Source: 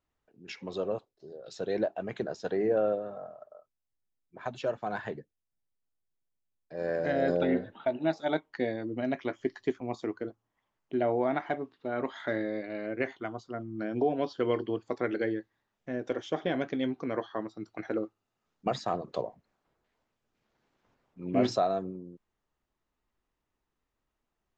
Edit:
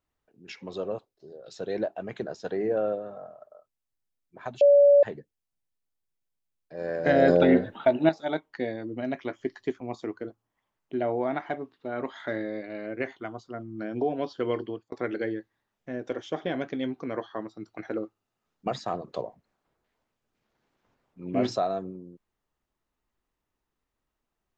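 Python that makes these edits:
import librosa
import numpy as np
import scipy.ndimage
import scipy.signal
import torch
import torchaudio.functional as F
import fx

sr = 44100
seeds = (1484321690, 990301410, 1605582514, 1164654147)

y = fx.edit(x, sr, fx.bleep(start_s=4.61, length_s=0.42, hz=571.0, db=-13.0),
    fx.clip_gain(start_s=7.06, length_s=1.03, db=8.0),
    fx.fade_out_span(start_s=14.64, length_s=0.28), tone=tone)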